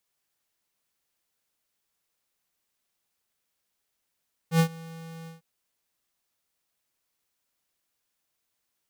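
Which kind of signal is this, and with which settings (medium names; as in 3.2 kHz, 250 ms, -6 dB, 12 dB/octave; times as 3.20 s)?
ADSR square 164 Hz, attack 85 ms, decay 83 ms, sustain -23.5 dB, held 0.76 s, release 141 ms -18 dBFS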